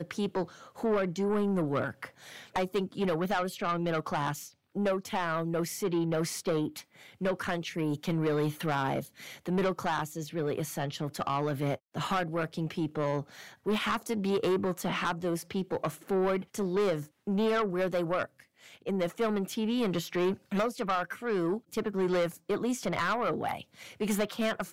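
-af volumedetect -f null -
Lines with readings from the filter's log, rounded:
mean_volume: -31.3 dB
max_volume: -23.3 dB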